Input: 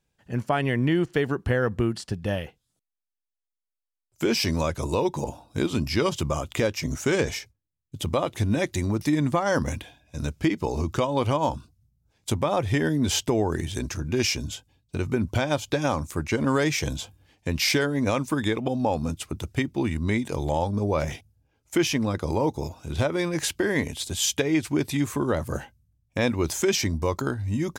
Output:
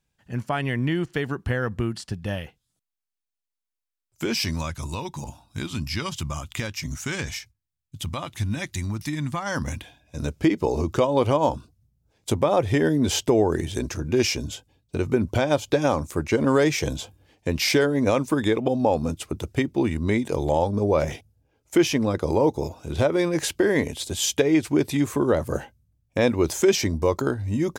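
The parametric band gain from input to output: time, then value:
parametric band 460 Hz 1.4 octaves
0:04.26 −4.5 dB
0:04.76 −14.5 dB
0:09.34 −14.5 dB
0:09.69 −5.5 dB
0:10.32 +6 dB

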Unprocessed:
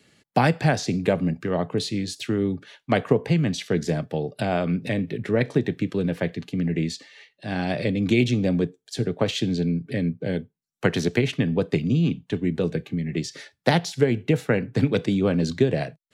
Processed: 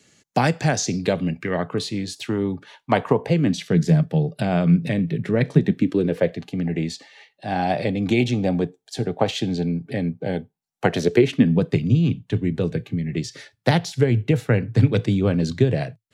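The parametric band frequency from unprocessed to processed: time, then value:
parametric band +12 dB 0.5 octaves
0:00.85 6,500 Hz
0:01.91 930 Hz
0:03.19 930 Hz
0:03.60 160 Hz
0:05.58 160 Hz
0:06.47 780 Hz
0:10.86 780 Hz
0:11.78 110 Hz

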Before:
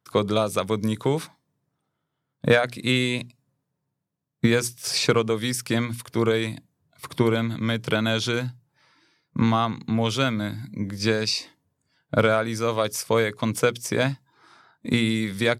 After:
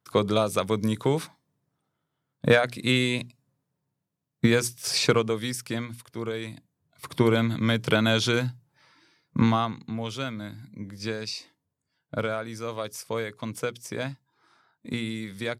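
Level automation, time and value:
0:05.10 −1 dB
0:06.19 −11 dB
0:07.39 +1 dB
0:09.37 +1 dB
0:09.96 −9 dB

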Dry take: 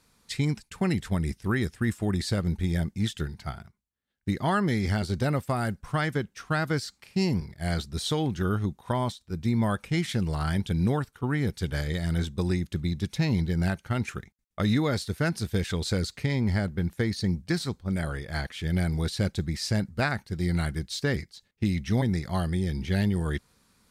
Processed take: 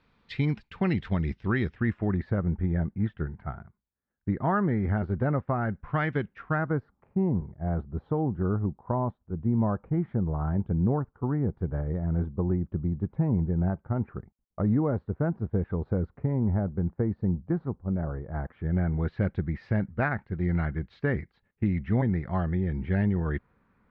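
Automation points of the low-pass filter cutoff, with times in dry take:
low-pass filter 24 dB per octave
0:01.58 3,300 Hz
0:02.34 1,600 Hz
0:05.51 1,600 Hz
0:06.20 2,900 Hz
0:06.87 1,100 Hz
0:18.25 1,100 Hz
0:19.24 2,000 Hz

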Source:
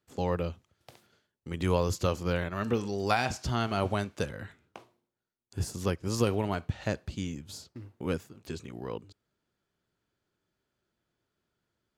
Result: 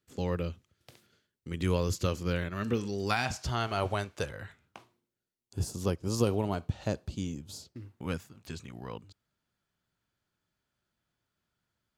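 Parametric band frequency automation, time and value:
parametric band −8 dB 1.1 octaves
0:03.02 800 Hz
0:03.51 220 Hz
0:04.37 220 Hz
0:05.59 1,900 Hz
0:07.54 1,900 Hz
0:08.04 390 Hz

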